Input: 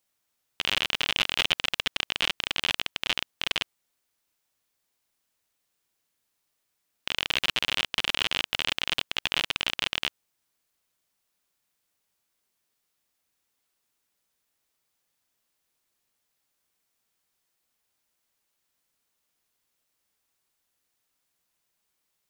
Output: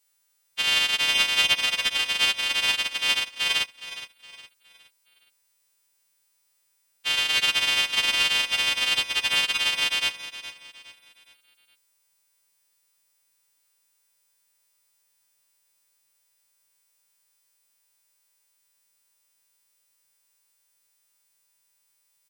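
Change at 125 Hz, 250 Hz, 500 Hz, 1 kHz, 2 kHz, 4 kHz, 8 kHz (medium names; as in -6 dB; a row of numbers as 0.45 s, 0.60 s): -3.5 dB, -2.5 dB, 0.0 dB, +2.5 dB, +5.5 dB, +5.5 dB, +8.5 dB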